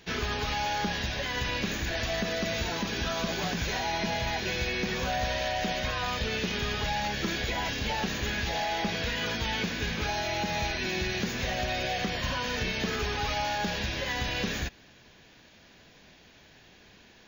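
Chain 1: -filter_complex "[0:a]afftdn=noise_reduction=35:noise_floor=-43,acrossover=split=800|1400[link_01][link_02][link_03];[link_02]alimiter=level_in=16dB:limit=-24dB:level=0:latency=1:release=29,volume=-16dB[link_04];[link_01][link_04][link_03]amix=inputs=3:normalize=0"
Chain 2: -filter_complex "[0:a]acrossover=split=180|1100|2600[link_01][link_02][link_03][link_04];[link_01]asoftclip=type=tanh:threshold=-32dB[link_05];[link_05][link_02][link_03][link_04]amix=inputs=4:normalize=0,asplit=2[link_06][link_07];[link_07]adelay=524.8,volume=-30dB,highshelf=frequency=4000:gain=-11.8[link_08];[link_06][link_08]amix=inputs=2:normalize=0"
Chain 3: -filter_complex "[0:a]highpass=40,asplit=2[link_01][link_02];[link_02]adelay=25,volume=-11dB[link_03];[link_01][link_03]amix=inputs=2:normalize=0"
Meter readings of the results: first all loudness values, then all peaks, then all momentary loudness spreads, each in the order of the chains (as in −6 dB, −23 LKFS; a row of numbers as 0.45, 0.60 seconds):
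−31.0, −30.5, −30.0 LKFS; −18.0, −18.0, −18.0 dBFS; 1, 1, 1 LU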